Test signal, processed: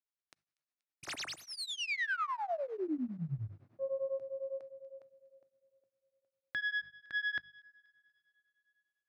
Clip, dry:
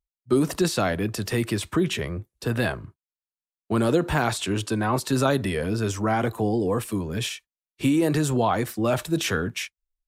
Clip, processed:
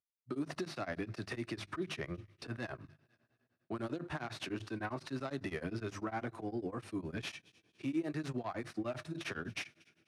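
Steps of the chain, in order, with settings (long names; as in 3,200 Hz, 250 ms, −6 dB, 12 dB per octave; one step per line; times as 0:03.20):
stylus tracing distortion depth 0.14 ms
high-shelf EQ 5,800 Hz −9 dB
mains-hum notches 50/100/150/200 Hz
downward compressor, threshold −25 dBFS
brickwall limiter −21.5 dBFS
loudspeaker in its box 130–9,600 Hz, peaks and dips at 200 Hz −6 dB, 470 Hz −8 dB, 920 Hz −5 dB, 3,200 Hz −5 dB, 7,500 Hz −9 dB
on a send: delay with a high-pass on its return 240 ms, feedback 40%, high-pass 2,200 Hz, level −22 dB
on the sum: coupled-rooms reverb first 0.3 s, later 3.7 s, from −18 dB, DRR 19 dB
tremolo along a rectified sine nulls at 9.9 Hz
level −3.5 dB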